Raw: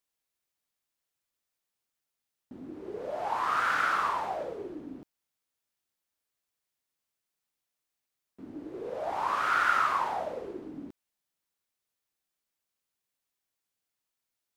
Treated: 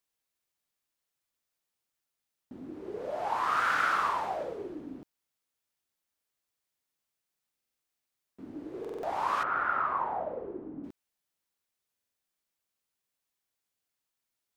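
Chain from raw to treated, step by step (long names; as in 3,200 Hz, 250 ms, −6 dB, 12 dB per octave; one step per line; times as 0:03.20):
0:09.43–0:10.84: low-pass filter 1,200 Hz 12 dB per octave
buffer that repeats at 0:07.55/0:08.80/0:11.92, samples 2,048, times 4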